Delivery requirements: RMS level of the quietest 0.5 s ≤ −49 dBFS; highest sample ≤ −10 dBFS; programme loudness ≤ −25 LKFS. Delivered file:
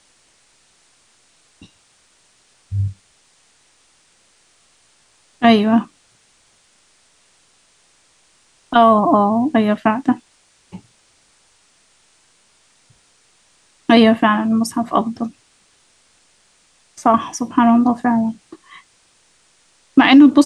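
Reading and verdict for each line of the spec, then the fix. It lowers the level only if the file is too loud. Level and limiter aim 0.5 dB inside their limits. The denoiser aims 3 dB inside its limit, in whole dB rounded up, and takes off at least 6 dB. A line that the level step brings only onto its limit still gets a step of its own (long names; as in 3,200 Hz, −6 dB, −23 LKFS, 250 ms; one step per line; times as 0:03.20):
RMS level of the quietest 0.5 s −57 dBFS: in spec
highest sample −1.5 dBFS: out of spec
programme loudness −15.5 LKFS: out of spec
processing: level −10 dB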